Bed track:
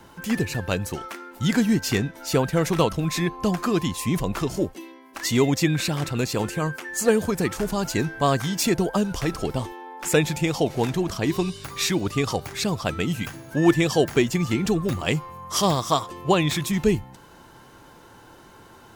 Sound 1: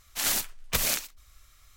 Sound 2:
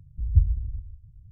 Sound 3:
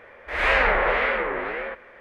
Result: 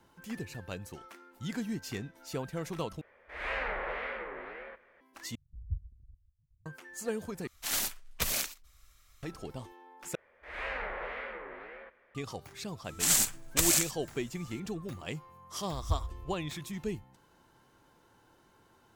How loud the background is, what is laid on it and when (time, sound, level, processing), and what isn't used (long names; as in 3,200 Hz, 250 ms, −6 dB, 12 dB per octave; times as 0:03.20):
bed track −15.5 dB
0:03.01: overwrite with 3 −15 dB
0:05.35: overwrite with 2 −17 dB + reverb reduction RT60 0.84 s
0:07.47: overwrite with 1 −5 dB
0:10.15: overwrite with 3 −17.5 dB
0:12.84: mix in 1 −3 dB + parametric band 7,700 Hz +10 dB 0.62 octaves
0:15.54: mix in 2 −12.5 dB + mu-law and A-law mismatch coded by A